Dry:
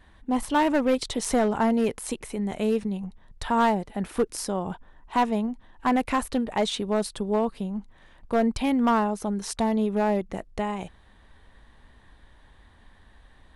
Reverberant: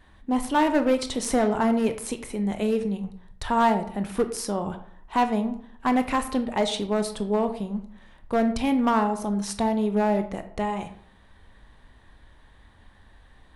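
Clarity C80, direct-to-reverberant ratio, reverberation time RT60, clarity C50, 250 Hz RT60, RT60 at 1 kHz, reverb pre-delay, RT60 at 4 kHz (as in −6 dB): 15.0 dB, 8.5 dB, 0.60 s, 12.0 dB, 0.60 s, 0.60 s, 19 ms, 0.35 s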